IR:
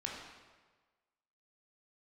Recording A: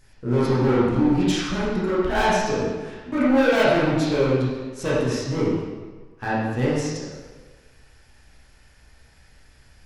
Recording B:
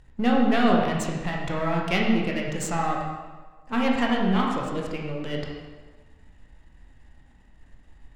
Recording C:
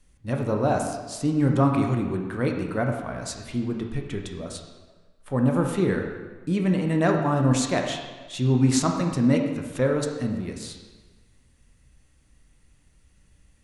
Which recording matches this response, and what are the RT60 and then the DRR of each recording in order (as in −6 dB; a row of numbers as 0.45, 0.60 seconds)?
B; 1.4, 1.4, 1.4 seconds; −9.0, −2.5, 2.0 decibels